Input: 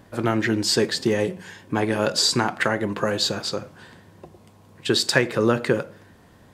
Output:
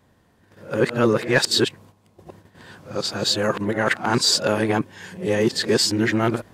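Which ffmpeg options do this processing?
ffmpeg -i in.wav -af "areverse,agate=range=-10dB:threshold=-48dB:ratio=16:detection=peak,acontrast=39,volume=-3.5dB" out.wav

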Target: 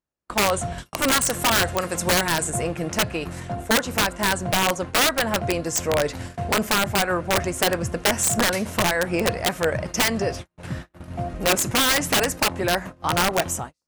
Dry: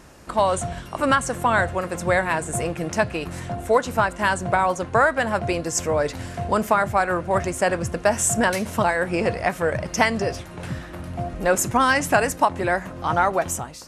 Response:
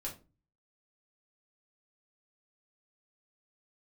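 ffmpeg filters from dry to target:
-filter_complex "[0:a]asettb=1/sr,asplit=3[link_01][link_02][link_03];[link_01]atrim=end=0.784[link_04];[link_02]atrim=start=0.78:end=2.5,asetpts=PTS-STARTPTS,afade=type=in:duration=0.004:curve=qsin,afade=type=out:start_time=1.716:duration=0.004:curve=qsin,highshelf=frequency=3400:gain=10[link_05];[link_03]atrim=start=2.496[link_06];[link_04][link_05]acrossfade=duration=0.004:curve1=hsin:curve2=qsin[link_07];[link_07][link_06]acrossfade=duration=0.004:curve1=qsin:curve2=hsin,agate=range=-43dB:threshold=-32dB:ratio=16:detection=peak,aeval=exprs='(mod(4.22*val(0)+1,2)-1)/4.22':channel_layout=same"

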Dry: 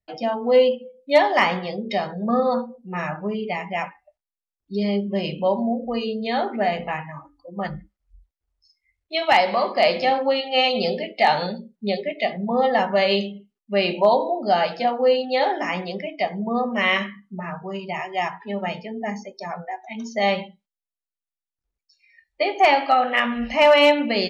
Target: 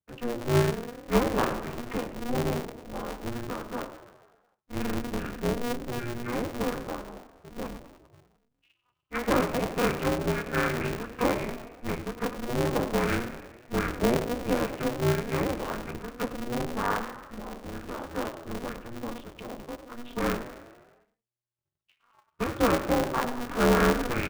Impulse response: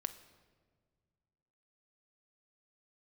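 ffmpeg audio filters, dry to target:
-filter_complex "[0:a]asplit=8[link_01][link_02][link_03][link_04][link_05][link_06][link_07][link_08];[link_02]adelay=100,afreqshift=63,volume=-12.5dB[link_09];[link_03]adelay=200,afreqshift=126,volume=-16.8dB[link_10];[link_04]adelay=300,afreqshift=189,volume=-21.1dB[link_11];[link_05]adelay=400,afreqshift=252,volume=-25.4dB[link_12];[link_06]adelay=500,afreqshift=315,volume=-29.7dB[link_13];[link_07]adelay=600,afreqshift=378,volume=-34dB[link_14];[link_08]adelay=700,afreqshift=441,volume=-38.3dB[link_15];[link_01][link_09][link_10][link_11][link_12][link_13][link_14][link_15]amix=inputs=8:normalize=0,asetrate=23361,aresample=44100,atempo=1.88775,aeval=exprs='val(0)*sgn(sin(2*PI*120*n/s))':channel_layout=same,volume=-7.5dB"

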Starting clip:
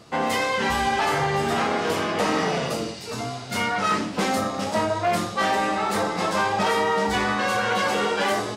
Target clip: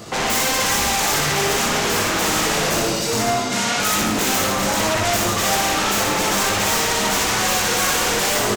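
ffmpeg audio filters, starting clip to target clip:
ffmpeg -i in.wav -filter_complex "[0:a]flanger=delay=18.5:depth=2.4:speed=1.2,asplit=2[link_01][link_02];[link_02]aeval=exprs='0.158*sin(PI/2*5.62*val(0)/0.158)':channel_layout=same,volume=-4.5dB[link_03];[link_01][link_03]amix=inputs=2:normalize=0,aexciter=amount=1.4:drive=7.3:freq=6000,asettb=1/sr,asplit=3[link_04][link_05][link_06];[link_04]atrim=end=3.334[link_07];[link_05]atrim=start=3.33:end=3.8,asetpts=PTS-STARTPTS,afade=type=in:duration=0.004:curve=qsin,afade=type=out:start_time=0.466:duration=0.004:curve=qsin,highpass=120,lowpass=7800[link_08];[link_06]atrim=start=3.796[link_09];[link_07][link_08]acrossfade=duration=0.004:curve1=hsin:curve2=qsin[link_10];[link_10][link_09]acrossfade=duration=0.004:curve1=qsin:curve2=hsin,asplit=2[link_11][link_12];[link_12]aecho=0:1:60|138|239.4|371.2|542.6:0.631|0.398|0.251|0.158|0.1[link_13];[link_11][link_13]amix=inputs=2:normalize=0,volume=-1dB" out.wav

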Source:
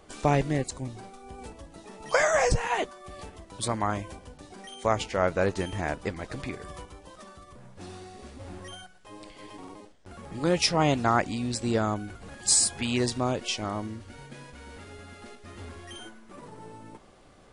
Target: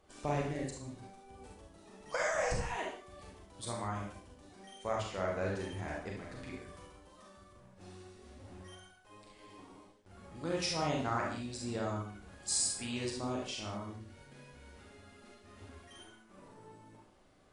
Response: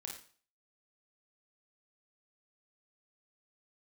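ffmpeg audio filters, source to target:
-filter_complex "[1:a]atrim=start_sample=2205,afade=type=out:start_time=0.22:duration=0.01,atrim=end_sample=10143,asetrate=32634,aresample=44100[link_01];[0:a][link_01]afir=irnorm=-1:irlink=0,volume=-9dB"

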